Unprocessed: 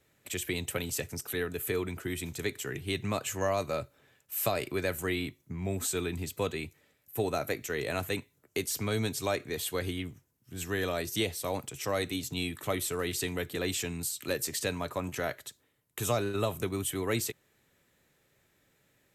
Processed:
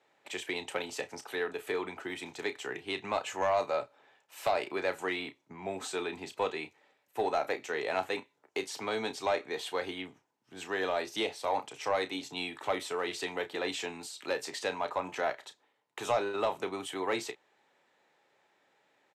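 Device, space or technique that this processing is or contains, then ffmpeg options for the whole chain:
intercom: -filter_complex "[0:a]highpass=350,lowpass=4600,equalizer=frequency=850:width_type=o:width=0.55:gain=11,asoftclip=type=tanh:threshold=-19.5dB,asplit=2[link_01][link_02];[link_02]adelay=32,volume=-11dB[link_03];[link_01][link_03]amix=inputs=2:normalize=0"

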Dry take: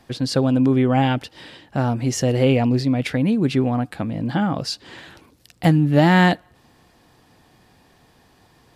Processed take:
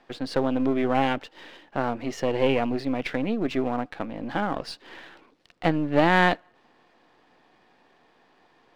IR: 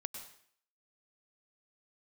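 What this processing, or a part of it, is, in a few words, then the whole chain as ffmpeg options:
crystal radio: -af "highpass=310,lowpass=3100,aeval=exprs='if(lt(val(0),0),0.447*val(0),val(0))':channel_layout=same"

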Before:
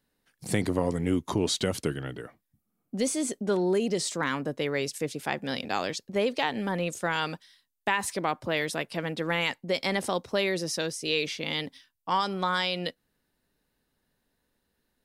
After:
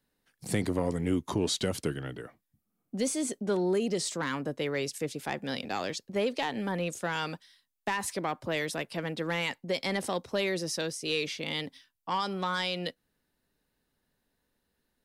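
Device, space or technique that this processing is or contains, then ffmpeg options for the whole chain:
one-band saturation: -filter_complex "[0:a]acrossover=split=400|4000[link_01][link_02][link_03];[link_02]asoftclip=type=tanh:threshold=-21.5dB[link_04];[link_01][link_04][link_03]amix=inputs=3:normalize=0,volume=-2dB"

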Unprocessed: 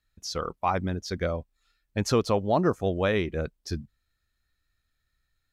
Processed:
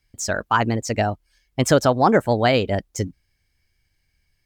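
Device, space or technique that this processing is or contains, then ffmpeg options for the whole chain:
nightcore: -af "asetrate=54684,aresample=44100,volume=7.5dB"

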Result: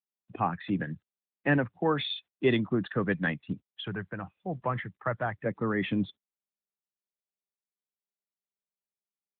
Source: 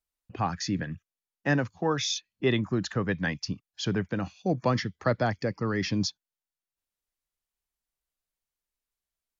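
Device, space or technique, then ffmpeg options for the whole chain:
mobile call with aggressive noise cancelling: -filter_complex "[0:a]asettb=1/sr,asplit=3[link_01][link_02][link_03];[link_01]atrim=end=3.834[link_04];[link_02]atrim=start=3.83:end=5.46,asetpts=PTS-STARTPTS,afade=type=in:duration=0.004:curve=qsin,afade=type=out:start_time=1.626:duration=0.004:curve=qsin,equalizer=frequency=250:width_type=o:width=1:gain=-12,equalizer=frequency=500:width_type=o:width=1:gain=-6,equalizer=frequency=4000:width_type=o:width=1:gain=-11[link_05];[link_03]atrim=start=5.456[link_06];[link_04][link_05]acrossfade=duration=0.004:curve1=hsin:curve2=qsin[link_07];[link_07][link_06]acrossfade=duration=0.004:curve1=qsin:curve2=hsin,highpass=130,afftdn=noise_reduction=20:noise_floor=-49,volume=1dB" -ar 8000 -c:a libopencore_amrnb -b:a 12200

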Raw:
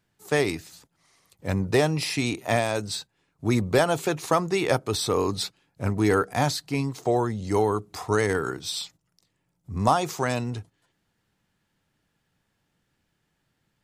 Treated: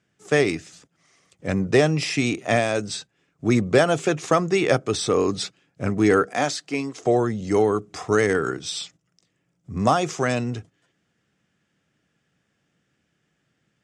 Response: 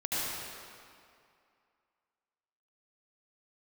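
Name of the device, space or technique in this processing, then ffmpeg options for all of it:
car door speaker: -filter_complex "[0:a]asettb=1/sr,asplit=3[link_01][link_02][link_03];[link_01]atrim=end=6.294[link_04];[link_02]atrim=start=6.29:end=7.04,asetpts=PTS-STARTPTS,afade=type=in:duration=0.004:curve=qsin,afade=type=out:start_time=0.746:duration=0.004:curve=qsin,highpass=290[link_05];[link_03]atrim=start=7.036[link_06];[link_04][link_05]acrossfade=duration=0.004:curve1=hsin:curve2=qsin[link_07];[link_07][link_06]acrossfade=duration=0.004:curve1=qsin:curve2=hsin,highpass=90,equalizer=frequency=98:width_type=q:width=4:gain=-5,equalizer=frequency=920:width_type=q:width=4:gain=-10,equalizer=frequency=4200:width_type=q:width=4:gain=-8,lowpass=frequency=7800:width=0.5412,lowpass=frequency=7800:width=1.3066,volume=4.5dB"

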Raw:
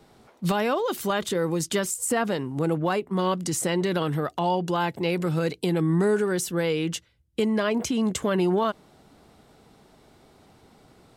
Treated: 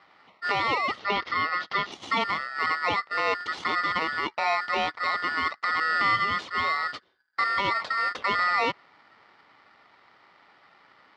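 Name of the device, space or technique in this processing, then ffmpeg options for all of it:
ring modulator pedal into a guitar cabinet: -filter_complex "[0:a]aeval=exprs='val(0)*sgn(sin(2*PI*1600*n/s))':channel_layout=same,highpass=110,equalizer=frequency=140:width_type=q:width=4:gain=-5,equalizer=frequency=1600:width_type=q:width=4:gain=-10,equalizer=frequency=2500:width_type=q:width=4:gain=-8,lowpass=frequency=3500:width=0.5412,lowpass=frequency=3500:width=1.3066,asettb=1/sr,asplit=3[link_01][link_02][link_03];[link_01]atrim=end=0.994[link_04];[link_02]atrim=start=0.99:end=1.92,asetpts=PTS-STARTPTS,afade=type=in:duration=0.004:curve=qsin,afade=type=out:start_time=0.926:duration=0.004:curve=qsin,lowpass=frequency=5500:width=0.5412,lowpass=frequency=5500:width=1.3066[link_05];[link_03]atrim=start=1.916[link_06];[link_04][link_05]acrossfade=duration=0.004:curve1=hsin:curve2=qsin[link_07];[link_07][link_06]acrossfade=duration=0.004:curve1=qsin:curve2=hsin,volume=2.5dB"

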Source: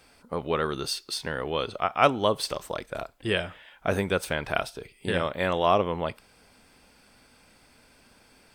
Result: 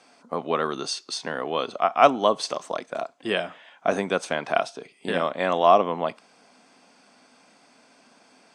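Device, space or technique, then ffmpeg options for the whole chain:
television speaker: -af "highpass=frequency=170:width=0.5412,highpass=frequency=170:width=1.3066,equalizer=frequency=260:width_type=q:width=4:gain=4,equalizer=frequency=700:width_type=q:width=4:gain=8,equalizer=frequency=1100:width_type=q:width=4:gain=5,equalizer=frequency=6300:width_type=q:width=4:gain=6,lowpass=frequency=8600:width=0.5412,lowpass=frequency=8600:width=1.3066"

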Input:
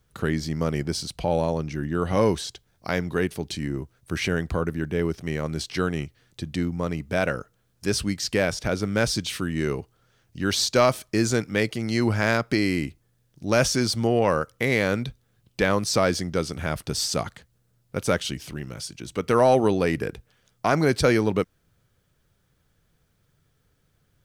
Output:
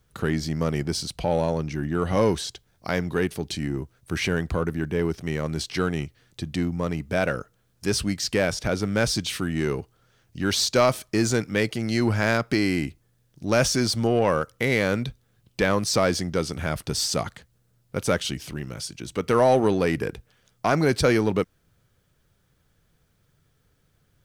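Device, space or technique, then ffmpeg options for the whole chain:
parallel distortion: -filter_complex "[0:a]asplit=2[link_01][link_02];[link_02]asoftclip=type=hard:threshold=-24dB,volume=-8.5dB[link_03];[link_01][link_03]amix=inputs=2:normalize=0,volume=-1.5dB"

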